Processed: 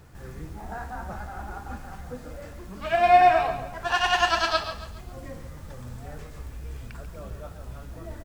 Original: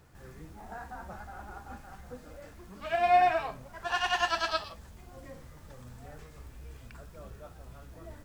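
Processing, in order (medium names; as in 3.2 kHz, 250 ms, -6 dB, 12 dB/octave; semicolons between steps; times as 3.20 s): bass shelf 200 Hz +4 dB; on a send: feedback delay 139 ms, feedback 39%, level -11 dB; on the sum: trim +6 dB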